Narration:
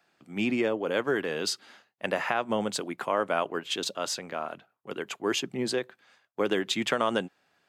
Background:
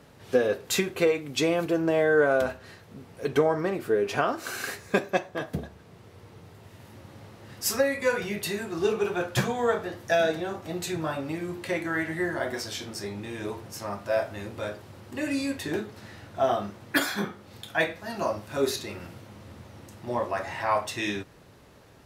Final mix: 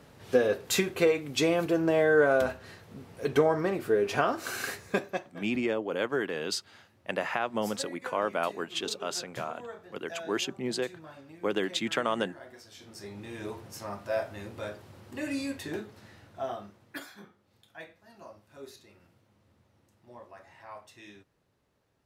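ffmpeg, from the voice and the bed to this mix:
-filter_complex "[0:a]adelay=5050,volume=0.75[s0];[1:a]volume=4.22,afade=t=out:st=4.64:d=0.81:silence=0.141254,afade=t=in:st=12.7:d=0.66:silence=0.211349,afade=t=out:st=15.42:d=1.73:silence=0.158489[s1];[s0][s1]amix=inputs=2:normalize=0"

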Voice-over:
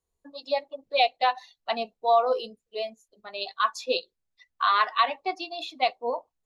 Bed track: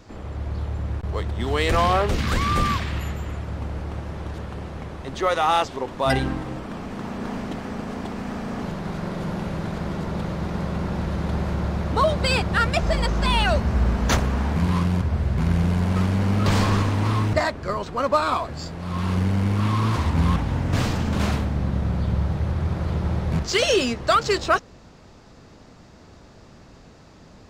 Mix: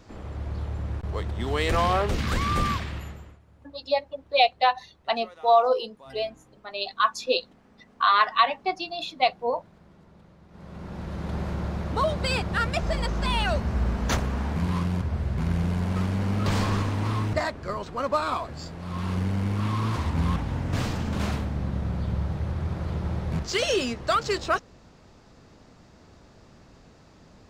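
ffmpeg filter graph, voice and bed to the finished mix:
-filter_complex "[0:a]adelay=3400,volume=1.33[s0];[1:a]volume=7.5,afade=t=out:st=2.69:d=0.7:silence=0.0749894,afade=t=in:st=10.49:d=0.92:silence=0.0891251[s1];[s0][s1]amix=inputs=2:normalize=0"

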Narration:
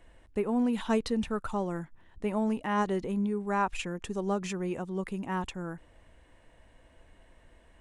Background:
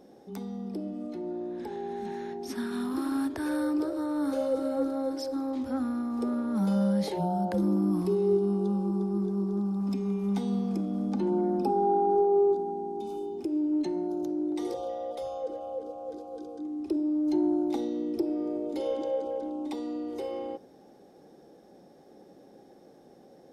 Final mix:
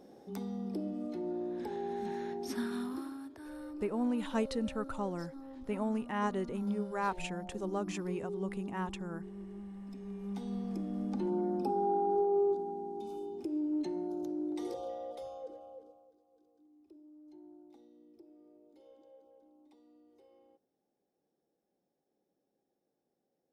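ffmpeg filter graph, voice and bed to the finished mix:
-filter_complex "[0:a]adelay=3450,volume=0.562[s0];[1:a]volume=2.66,afade=t=out:st=2.57:d=0.6:silence=0.188365,afade=t=in:st=9.92:d=1.08:silence=0.298538,afade=t=out:st=14.9:d=1.22:silence=0.0707946[s1];[s0][s1]amix=inputs=2:normalize=0"

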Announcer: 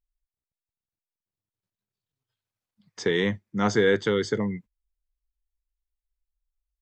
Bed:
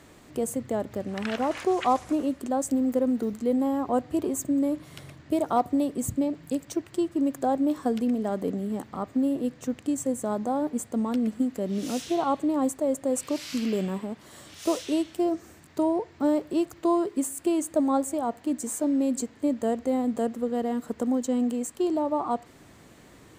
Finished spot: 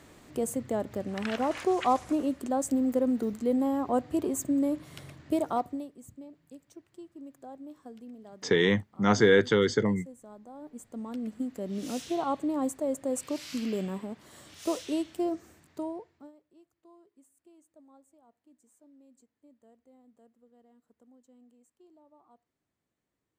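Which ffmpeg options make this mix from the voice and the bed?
-filter_complex "[0:a]adelay=5450,volume=1.06[s0];[1:a]volume=5.01,afade=t=out:st=5.35:d=0.56:silence=0.11885,afade=t=in:st=10.52:d=1.4:silence=0.158489,afade=t=out:st=15.28:d=1.04:silence=0.0334965[s1];[s0][s1]amix=inputs=2:normalize=0"

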